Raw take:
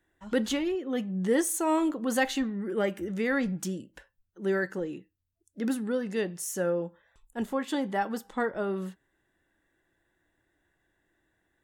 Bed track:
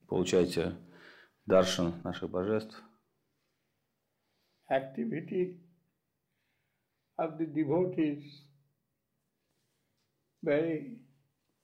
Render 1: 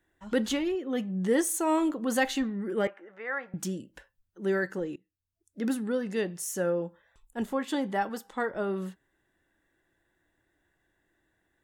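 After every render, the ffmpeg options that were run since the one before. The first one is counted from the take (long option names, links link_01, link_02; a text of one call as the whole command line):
ffmpeg -i in.wav -filter_complex "[0:a]asettb=1/sr,asplit=3[link_01][link_02][link_03];[link_01]atrim=end=2.874[link_04];[link_02]atrim=start=2.87:end=3.54,asetpts=PTS-STARTPTS,afade=type=in:duration=0.004:curve=qsin,afade=type=out:start_time=0.666:duration=0.004:curve=qsin,asuperpass=centerf=1100:order=4:qfactor=0.89[link_05];[link_03]atrim=start=3.536[link_06];[link_04][link_05]acrossfade=duration=0.004:curve1=hsin:curve2=qsin[link_07];[link_07][link_06]acrossfade=duration=0.004:curve1=qsin:curve2=hsin,asettb=1/sr,asplit=3[link_08][link_09][link_10];[link_08]atrim=end=8.094[link_11];[link_09]atrim=start=8.09:end=8.5,asetpts=PTS-STARTPTS,afade=type=in:duration=0.004:curve=qsin,afade=type=out:start_time=0.406:duration=0.004:curve=qsin,lowshelf=frequency=250:gain=-8[link_12];[link_10]atrim=start=8.496[link_13];[link_11][link_12]acrossfade=duration=0.004:curve1=hsin:curve2=qsin[link_14];[link_14][link_13]acrossfade=duration=0.004:curve1=qsin:curve2=hsin,asplit=2[link_15][link_16];[link_15]atrim=end=4.96,asetpts=PTS-STARTPTS,afade=type=out:start_time=4.956:duration=0.004:curve=hsin:silence=0.0841395[link_17];[link_16]atrim=start=4.96,asetpts=PTS-STARTPTS,afade=type=in:duration=0.64:silence=0.0841395[link_18];[link_17][link_18]concat=n=2:v=0:a=1" out.wav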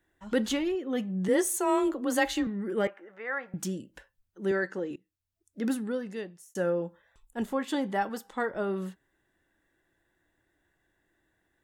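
ffmpeg -i in.wav -filter_complex "[0:a]asettb=1/sr,asplit=3[link_01][link_02][link_03];[link_01]atrim=end=1.284[link_04];[link_02]atrim=start=1.28:end=2.47,asetpts=PTS-STARTPTS,afade=type=in:duration=0.004:curve=qsin,afade=type=out:start_time=1.186:duration=0.004:curve=qsin,afreqshift=26[link_05];[link_03]atrim=start=2.466[link_06];[link_04][link_05]acrossfade=duration=0.004:curve1=hsin:curve2=qsin[link_07];[link_07][link_06]acrossfade=duration=0.004:curve1=qsin:curve2=hsin,asettb=1/sr,asplit=3[link_08][link_09][link_10];[link_08]atrim=end=4.514[link_11];[link_09]atrim=start=4.51:end=4.91,asetpts=PTS-STARTPTS,afade=type=in:duration=0.004:curve=qsin,afade=type=out:start_time=0.396:duration=0.004:curve=qsin,highpass=200,lowpass=6800[link_12];[link_10]atrim=start=4.906[link_13];[link_11][link_12]acrossfade=duration=0.004:curve1=hsin:curve2=qsin[link_14];[link_14][link_13]acrossfade=duration=0.004:curve1=qsin:curve2=hsin,asplit=2[link_15][link_16];[link_15]atrim=end=6.55,asetpts=PTS-STARTPTS,afade=type=out:start_time=5.73:duration=0.82[link_17];[link_16]atrim=start=6.55,asetpts=PTS-STARTPTS,afade=type=in:duration=0.004:curve=hsin[link_18];[link_17][link_18]concat=n=2:v=0:a=1" out.wav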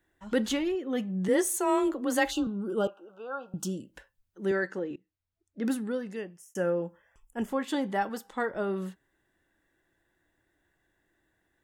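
ffmpeg -i in.wav -filter_complex "[0:a]asplit=3[link_01][link_02][link_03];[link_01]afade=type=out:start_time=2.3:duration=0.02[link_04];[link_02]asuperstop=centerf=2000:order=12:qfactor=1.8,afade=type=in:start_time=2.3:duration=0.02,afade=type=out:start_time=3.79:duration=0.02[link_05];[link_03]afade=type=in:start_time=3.79:duration=0.02[link_06];[link_04][link_05][link_06]amix=inputs=3:normalize=0,asettb=1/sr,asplit=3[link_07][link_08][link_09];[link_07]atrim=end=4.794[link_10];[link_08]atrim=start=4.79:end=5.65,asetpts=PTS-STARTPTS,afade=type=in:duration=0.004:curve=qsin,afade=type=out:start_time=0.856:duration=0.004:curve=qsin,adynamicsmooth=sensitivity=4:basefreq=4400[link_11];[link_09]atrim=start=5.646[link_12];[link_10][link_11]acrossfade=duration=0.004:curve1=hsin:curve2=qsin[link_13];[link_13][link_12]acrossfade=duration=0.004:curve1=qsin:curve2=hsin,asettb=1/sr,asplit=3[link_14][link_15][link_16];[link_14]atrim=end=6.164[link_17];[link_15]atrim=start=6.16:end=7.49,asetpts=PTS-STARTPTS,afade=type=in:duration=0.004:curve=qsin,afade=type=out:start_time=1.326:duration=0.004:curve=qsin,asuperstop=centerf=4000:order=8:qfactor=2.9[link_18];[link_16]atrim=start=7.486[link_19];[link_17][link_18]acrossfade=duration=0.004:curve1=hsin:curve2=qsin[link_20];[link_20][link_19]acrossfade=duration=0.004:curve1=qsin:curve2=hsin" out.wav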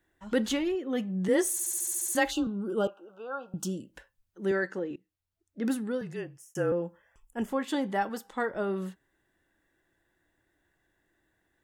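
ffmpeg -i in.wav -filter_complex "[0:a]asettb=1/sr,asplit=3[link_01][link_02][link_03];[link_01]atrim=end=6.014[link_04];[link_02]atrim=start=6.01:end=6.72,asetpts=PTS-STARTPTS,afade=type=in:duration=0.004:curve=qsin,afade=type=out:start_time=0.706:duration=0.004:curve=qsin,afreqshift=-35[link_05];[link_03]atrim=start=6.716[link_06];[link_04][link_05]acrossfade=duration=0.004:curve1=hsin:curve2=qsin[link_07];[link_07][link_06]acrossfade=duration=0.004:curve1=qsin:curve2=hsin,asplit=10[link_08][link_09][link_10][link_11][link_12][link_13][link_14][link_15][link_16][link_17];[link_08]atrim=end=1.592[link_18];[link_09]atrim=start=1.518:end=1.592[link_19];[link_10]atrim=start=1.518:end=1.592[link_20];[link_11]atrim=start=1.518:end=1.592[link_21];[link_12]atrim=start=1.518:end=1.592[link_22];[link_13]atrim=start=1.518:end=1.592[link_23];[link_14]atrim=start=1.518:end=1.592[link_24];[link_15]atrim=start=1.518:end=1.592[link_25];[link_16]atrim=start=1.518:end=1.592[link_26];[link_17]atrim=start=2.148[link_27];[link_18][link_19]acrossfade=duration=0.004:curve1=hsin:curve2=hsin[link_28];[link_28][link_20]acrossfade=duration=0.004:curve1=hsin:curve2=hsin[link_29];[link_29][link_21]acrossfade=duration=0.004:curve1=hsin:curve2=hsin[link_30];[link_30][link_22]acrossfade=duration=0.004:curve1=hsin:curve2=hsin[link_31];[link_31][link_23]acrossfade=duration=0.004:curve1=hsin:curve2=hsin[link_32];[link_32][link_24]acrossfade=duration=0.004:curve1=hsin:curve2=hsin[link_33];[link_33][link_25]acrossfade=duration=0.004:curve1=hsin:curve2=hsin[link_34];[link_34][link_26]acrossfade=duration=0.004:curve1=hsin:curve2=hsin[link_35];[link_35][link_27]acrossfade=duration=0.004:curve1=hsin:curve2=hsin" out.wav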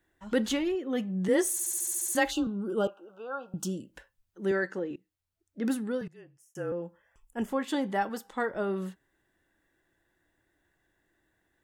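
ffmpeg -i in.wav -filter_complex "[0:a]asplit=2[link_01][link_02];[link_01]atrim=end=6.08,asetpts=PTS-STARTPTS,afade=type=out:start_time=6.076:duration=0.004:curve=hsin:silence=0.105925[link_03];[link_02]atrim=start=6.08,asetpts=PTS-STARTPTS,afade=type=in:duration=1.32:silence=0.105925[link_04];[link_03][link_04]concat=n=2:v=0:a=1" out.wav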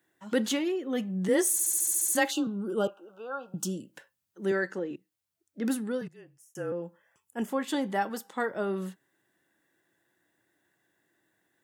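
ffmpeg -i in.wav -af "highpass=frequency=120:width=0.5412,highpass=frequency=120:width=1.3066,highshelf=frequency=5600:gain=5.5" out.wav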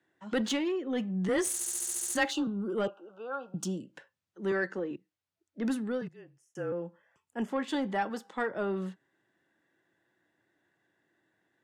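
ffmpeg -i in.wav -filter_complex "[0:a]acrossover=split=160|1300[link_01][link_02][link_03];[link_02]asoftclip=type=tanh:threshold=-25dB[link_04];[link_03]adynamicsmooth=sensitivity=3:basefreq=5400[link_05];[link_01][link_04][link_05]amix=inputs=3:normalize=0" out.wav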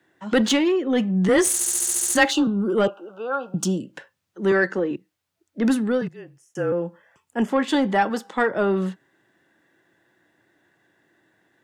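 ffmpeg -i in.wav -af "volume=11dB" out.wav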